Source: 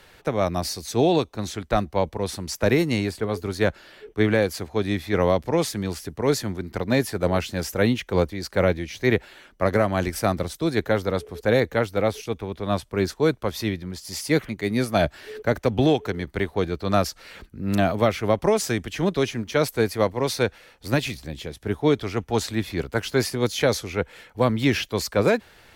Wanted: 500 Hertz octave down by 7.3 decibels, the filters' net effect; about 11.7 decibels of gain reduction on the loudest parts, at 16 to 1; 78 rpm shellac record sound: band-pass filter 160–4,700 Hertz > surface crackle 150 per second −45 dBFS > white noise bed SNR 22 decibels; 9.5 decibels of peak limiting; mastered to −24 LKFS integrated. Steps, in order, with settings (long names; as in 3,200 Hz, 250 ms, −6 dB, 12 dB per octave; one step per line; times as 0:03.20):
parametric band 500 Hz −9 dB
downward compressor 16 to 1, threshold −29 dBFS
brickwall limiter −25.5 dBFS
band-pass filter 160–4,700 Hz
surface crackle 150 per second −45 dBFS
white noise bed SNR 22 dB
level +14.5 dB